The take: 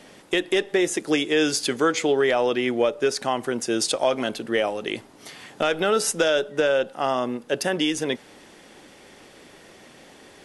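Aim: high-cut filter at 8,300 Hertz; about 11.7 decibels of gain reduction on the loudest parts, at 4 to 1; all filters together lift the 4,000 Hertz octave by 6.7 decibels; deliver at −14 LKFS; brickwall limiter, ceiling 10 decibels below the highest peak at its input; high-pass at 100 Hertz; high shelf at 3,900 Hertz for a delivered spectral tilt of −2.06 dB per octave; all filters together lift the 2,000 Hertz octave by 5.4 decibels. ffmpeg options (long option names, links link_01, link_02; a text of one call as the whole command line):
ffmpeg -i in.wav -af "highpass=100,lowpass=8300,equalizer=frequency=2000:width_type=o:gain=4.5,highshelf=frequency=3900:gain=6.5,equalizer=frequency=4000:width_type=o:gain=3.5,acompressor=threshold=-29dB:ratio=4,volume=20dB,alimiter=limit=-1.5dB:level=0:latency=1" out.wav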